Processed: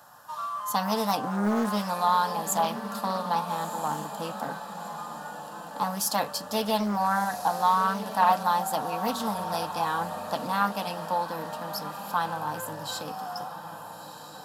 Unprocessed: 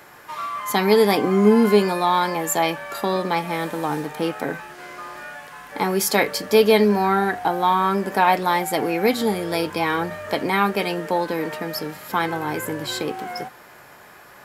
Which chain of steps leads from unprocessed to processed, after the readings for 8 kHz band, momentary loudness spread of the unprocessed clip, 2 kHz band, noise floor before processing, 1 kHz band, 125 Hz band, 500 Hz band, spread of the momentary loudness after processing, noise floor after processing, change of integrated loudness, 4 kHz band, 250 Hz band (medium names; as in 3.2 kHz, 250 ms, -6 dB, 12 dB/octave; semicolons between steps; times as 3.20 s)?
-4.0 dB, 15 LU, -10.0 dB, -46 dBFS, -3.0 dB, -8.0 dB, -12.5 dB, 13 LU, -43 dBFS, -7.5 dB, -7.0 dB, -9.5 dB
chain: dynamic bell 2.6 kHz, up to +7 dB, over -44 dBFS, Q 4.7; high-pass 140 Hz 6 dB/octave; static phaser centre 910 Hz, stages 4; echo that smears into a reverb 1352 ms, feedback 44%, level -10.5 dB; loudspeaker Doppler distortion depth 0.46 ms; trim -3 dB